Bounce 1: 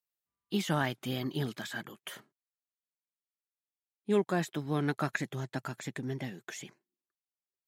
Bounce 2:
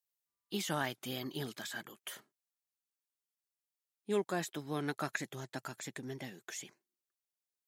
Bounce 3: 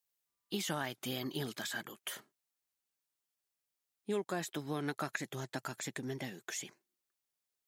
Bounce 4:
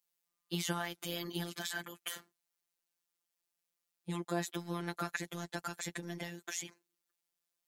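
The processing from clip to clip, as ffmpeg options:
ffmpeg -i in.wav -af "bass=frequency=250:gain=-6,treble=frequency=4000:gain=6,volume=-4dB" out.wav
ffmpeg -i in.wav -af "acompressor=threshold=-38dB:ratio=2.5,volume=3.5dB" out.wav
ffmpeg -i in.wav -af "afftfilt=real='hypot(re,im)*cos(PI*b)':imag='0':win_size=1024:overlap=0.75,volume=4dB" out.wav

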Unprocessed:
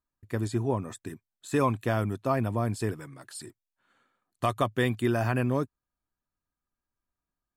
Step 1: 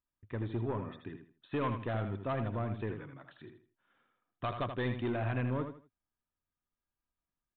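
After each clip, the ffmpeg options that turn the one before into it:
ffmpeg -i in.wav -af "aresample=8000,asoftclip=type=tanh:threshold=-23dB,aresample=44100,aecho=1:1:80|160|240:0.398|0.107|0.029,volume=-5dB" out.wav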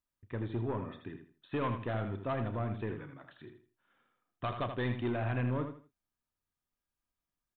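ffmpeg -i in.wav -filter_complex "[0:a]asplit=2[link_01][link_02];[link_02]adelay=33,volume=-13dB[link_03];[link_01][link_03]amix=inputs=2:normalize=0" out.wav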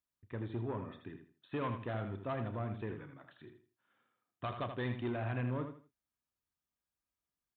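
ffmpeg -i in.wav -af "highpass=43,volume=-3.5dB" out.wav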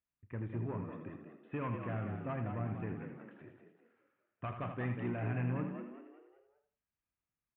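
ffmpeg -i in.wav -filter_complex "[0:a]firequalizer=gain_entry='entry(180,0);entry(380,-5);entry(2600,-2);entry(3700,-24)':delay=0.05:min_phase=1,asplit=6[link_01][link_02][link_03][link_04][link_05][link_06];[link_02]adelay=192,afreqshift=59,volume=-8dB[link_07];[link_03]adelay=384,afreqshift=118,volume=-15.5dB[link_08];[link_04]adelay=576,afreqshift=177,volume=-23.1dB[link_09];[link_05]adelay=768,afreqshift=236,volume=-30.6dB[link_10];[link_06]adelay=960,afreqshift=295,volume=-38.1dB[link_11];[link_01][link_07][link_08][link_09][link_10][link_11]amix=inputs=6:normalize=0,volume=1.5dB" out.wav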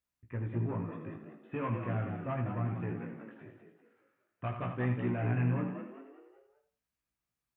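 ffmpeg -i in.wav -af "flanger=delay=16:depth=2.7:speed=0.4,volume=6dB" out.wav

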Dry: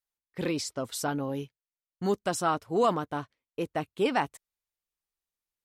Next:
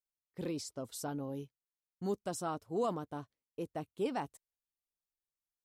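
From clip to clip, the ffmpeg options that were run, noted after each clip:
ffmpeg -i in.wav -af "equalizer=frequency=2000:width=0.63:gain=-9,volume=-7dB" out.wav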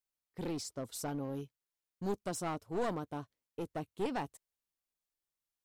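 ffmpeg -i in.wav -af "aeval=exprs='clip(val(0),-1,0.0119)':channel_layout=same,volume=1.5dB" out.wav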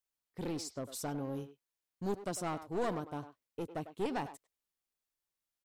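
ffmpeg -i in.wav -filter_complex "[0:a]asplit=2[link_01][link_02];[link_02]adelay=100,highpass=300,lowpass=3400,asoftclip=type=hard:threshold=-31dB,volume=-11dB[link_03];[link_01][link_03]amix=inputs=2:normalize=0" out.wav

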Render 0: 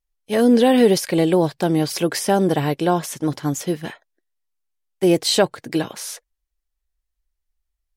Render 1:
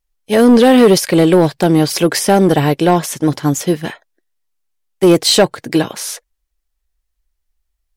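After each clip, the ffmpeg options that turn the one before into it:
ffmpeg -i in.wav -af "asoftclip=type=tanh:threshold=-10.5dB,aeval=exprs='0.299*(cos(1*acos(clip(val(0)/0.299,-1,1)))-cos(1*PI/2))+0.0075*(cos(7*acos(clip(val(0)/0.299,-1,1)))-cos(7*PI/2))':channel_layout=same,volume=8.5dB" out.wav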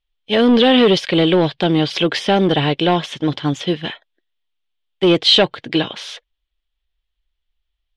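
ffmpeg -i in.wav -af "lowpass=frequency=3300:width_type=q:width=4.5,volume=-4.5dB" out.wav

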